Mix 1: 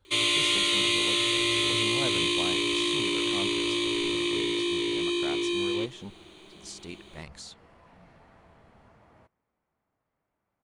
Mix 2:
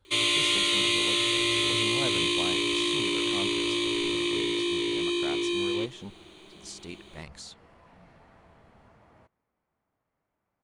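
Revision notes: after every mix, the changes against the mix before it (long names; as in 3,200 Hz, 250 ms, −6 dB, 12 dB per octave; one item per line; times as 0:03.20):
nothing changed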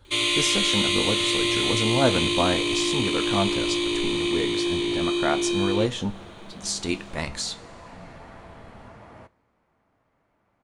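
speech +11.0 dB
second sound +11.0 dB
reverb: on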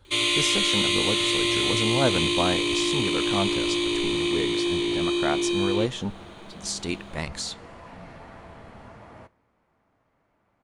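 speech: send −10.5 dB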